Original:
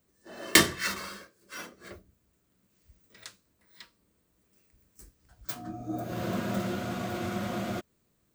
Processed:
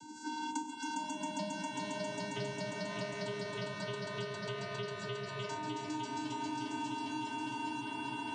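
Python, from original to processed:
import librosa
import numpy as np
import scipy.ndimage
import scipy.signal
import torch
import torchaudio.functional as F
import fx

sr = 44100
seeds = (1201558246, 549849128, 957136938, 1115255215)

p1 = fx.spec_box(x, sr, start_s=0.5, length_s=0.2, low_hz=1200.0, high_hz=5900.0, gain_db=-11)
p2 = fx.over_compress(p1, sr, threshold_db=-36.0, ratio=-1.0)
p3 = p1 + F.gain(torch.from_numpy(p2), 3.0).numpy()
p4 = fx.vocoder(p3, sr, bands=16, carrier='square', carrier_hz=307.0)
p5 = fx.fixed_phaser(p4, sr, hz=810.0, stages=4)
p6 = p5 + fx.echo_swell(p5, sr, ms=135, loudest=5, wet_db=-3.5, dry=0)
p7 = fx.echo_pitch(p6, sr, ms=556, semitones=-7, count=2, db_per_echo=-3.0)
y = fx.band_squash(p7, sr, depth_pct=100)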